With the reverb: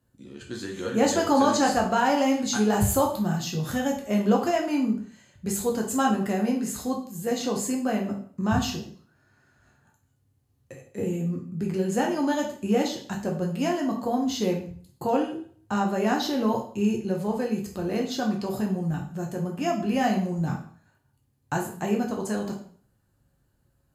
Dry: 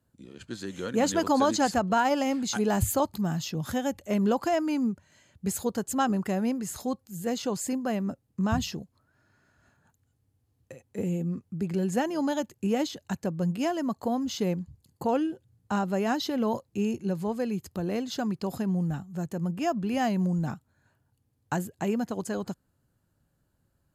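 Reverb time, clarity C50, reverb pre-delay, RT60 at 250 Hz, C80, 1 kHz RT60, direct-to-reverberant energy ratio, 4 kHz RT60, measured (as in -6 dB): 0.50 s, 7.5 dB, 4 ms, 0.45 s, 11.5 dB, 0.50 s, -0.5 dB, 0.45 s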